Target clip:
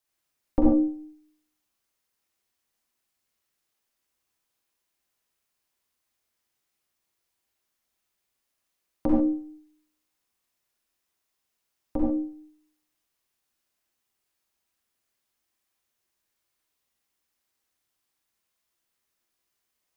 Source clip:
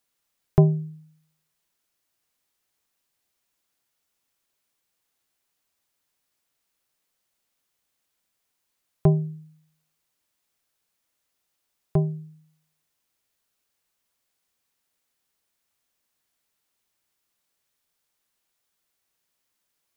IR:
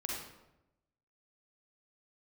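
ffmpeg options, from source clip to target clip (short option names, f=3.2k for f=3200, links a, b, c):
-filter_complex "[0:a]aeval=exprs='val(0)*sin(2*PI*150*n/s)':c=same,bandreject=f=155.1:t=h:w=4,bandreject=f=310.2:t=h:w=4,bandreject=f=465.3:t=h:w=4,bandreject=f=620.4:t=h:w=4,bandreject=f=775.5:t=h:w=4,bandreject=f=930.6:t=h:w=4,bandreject=f=1.0857k:t=h:w=4,bandreject=f=1.2408k:t=h:w=4,bandreject=f=1.3959k:t=h:w=4,bandreject=f=1.551k:t=h:w=4,bandreject=f=1.7061k:t=h:w=4,bandreject=f=1.8612k:t=h:w=4,bandreject=f=2.0163k:t=h:w=4,bandreject=f=2.1714k:t=h:w=4,bandreject=f=2.3265k:t=h:w=4,bandreject=f=2.4816k:t=h:w=4,bandreject=f=2.6367k:t=h:w=4,bandreject=f=2.7918k:t=h:w=4,bandreject=f=2.9469k:t=h:w=4,bandreject=f=3.102k:t=h:w=4,bandreject=f=3.2571k:t=h:w=4,bandreject=f=3.4122k:t=h:w=4,bandreject=f=3.5673k:t=h:w=4,bandreject=f=3.7224k:t=h:w=4,bandreject=f=3.8775k:t=h:w=4,bandreject=f=4.0326k:t=h:w=4,bandreject=f=4.1877k:t=h:w=4,bandreject=f=4.3428k:t=h:w=4,bandreject=f=4.4979k:t=h:w=4,bandreject=f=4.653k:t=h:w=4,bandreject=f=4.8081k:t=h:w=4,bandreject=f=4.9632k:t=h:w=4,bandreject=f=5.1183k:t=h:w=4,bandreject=f=5.2734k:t=h:w=4,bandreject=f=5.4285k:t=h:w=4,bandreject=f=5.5836k:t=h:w=4,bandreject=f=5.7387k:t=h:w=4[a];[1:a]atrim=start_sample=2205,atrim=end_sample=6615[b];[a][b]afir=irnorm=-1:irlink=0"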